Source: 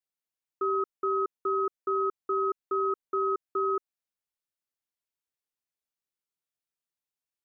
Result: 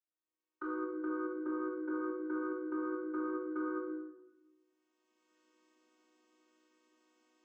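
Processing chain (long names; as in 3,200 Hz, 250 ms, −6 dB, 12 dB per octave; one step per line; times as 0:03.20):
channel vocoder with a chord as carrier major triad, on B3
camcorder AGC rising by 19 dB per second
high-pass filter 220 Hz 24 dB per octave
downward compressor 3 to 1, threshold −42 dBFS, peak gain reduction 13 dB
rectangular room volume 520 cubic metres, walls mixed, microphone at 2.7 metres
level −6.5 dB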